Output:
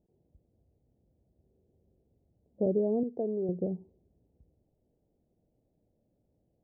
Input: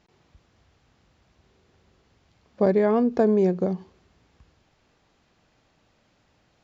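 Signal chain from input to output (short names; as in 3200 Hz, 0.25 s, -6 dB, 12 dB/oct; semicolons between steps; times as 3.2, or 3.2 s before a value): 3.03–3.49 tilt +3.5 dB/oct; inverse Chebyshev low-pass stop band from 1200 Hz, stop band 40 dB; gain -7 dB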